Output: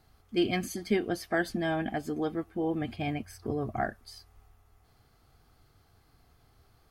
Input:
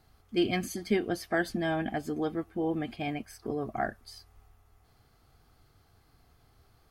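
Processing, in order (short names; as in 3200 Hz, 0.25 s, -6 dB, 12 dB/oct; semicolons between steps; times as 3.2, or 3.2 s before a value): 2.81–3.84 bell 92 Hz +11 dB 1.1 oct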